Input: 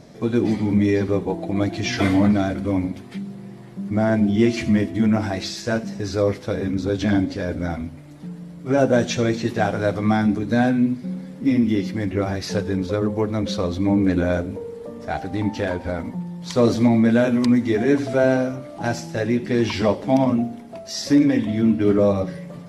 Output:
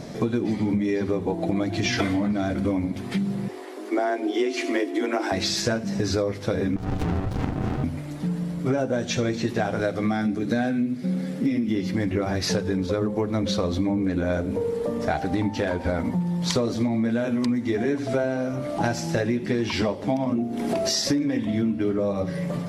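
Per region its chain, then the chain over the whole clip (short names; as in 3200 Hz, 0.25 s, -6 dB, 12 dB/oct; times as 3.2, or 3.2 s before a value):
3.48–5.32 steep high-pass 250 Hz 96 dB/oct + frequency shift +20 Hz
6.76–7.84 compressor 2.5:1, threshold -24 dBFS + ring modulator 380 Hz + running maximum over 65 samples
9.8–11.69 HPF 160 Hz 6 dB/oct + bell 970 Hz -10 dB 0.29 oct
20.32–21.01 bell 350 Hz +9.5 dB 0.64 oct + upward compressor, threshold -23 dBFS + mismatched tape noise reduction encoder only
whole clip: notches 50/100 Hz; compressor 16:1, threshold -29 dBFS; gain +8.5 dB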